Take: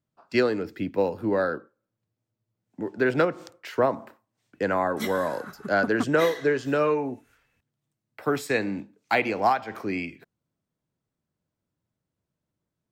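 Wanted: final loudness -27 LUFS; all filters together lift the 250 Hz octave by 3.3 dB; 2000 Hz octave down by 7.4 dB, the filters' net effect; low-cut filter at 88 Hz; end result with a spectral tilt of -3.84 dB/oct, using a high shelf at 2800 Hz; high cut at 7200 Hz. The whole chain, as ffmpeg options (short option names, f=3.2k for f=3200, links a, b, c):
-af "highpass=88,lowpass=7.2k,equalizer=f=250:t=o:g=4.5,equalizer=f=2k:t=o:g=-8.5,highshelf=f=2.8k:g=-5.5,volume=-1dB"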